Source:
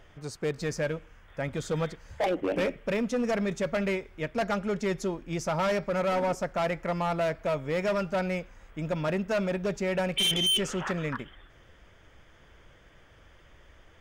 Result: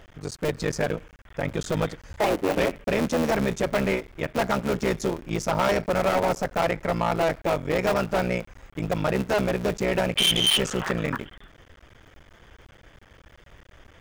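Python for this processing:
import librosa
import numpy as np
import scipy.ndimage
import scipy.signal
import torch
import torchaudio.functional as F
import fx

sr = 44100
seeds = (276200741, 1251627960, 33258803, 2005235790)

y = fx.cycle_switch(x, sr, every=3, mode='muted')
y = F.gain(torch.from_numpy(y), 6.0).numpy()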